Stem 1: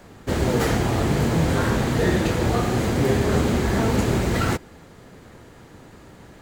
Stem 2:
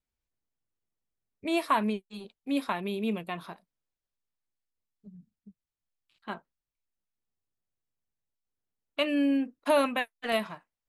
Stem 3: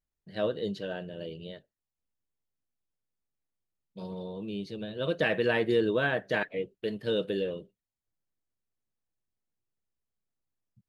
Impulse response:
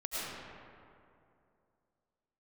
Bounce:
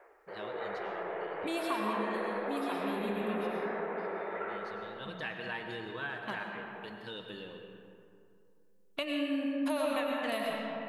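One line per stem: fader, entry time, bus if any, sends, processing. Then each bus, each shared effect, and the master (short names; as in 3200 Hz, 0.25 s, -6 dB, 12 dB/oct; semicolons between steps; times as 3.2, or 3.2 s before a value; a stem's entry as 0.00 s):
-8.0 dB, 0.00 s, bus A, send -16 dB, steep high-pass 390 Hz 48 dB/oct; AGC gain up to 10 dB; steep low-pass 2200 Hz; auto duck -13 dB, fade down 0.25 s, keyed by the third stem
-0.5 dB, 0.00 s, bus A, send -5 dB, high shelf 4400 Hz +6 dB
-8.5 dB, 0.00 s, no bus, send -7 dB, resonant low shelf 710 Hz -6.5 dB, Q 3
bus A: 0.0 dB, compressor, threshold -33 dBFS, peak gain reduction 14 dB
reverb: on, RT60 2.6 s, pre-delay 65 ms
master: compressor 1.5:1, threshold -41 dBFS, peak gain reduction 7.5 dB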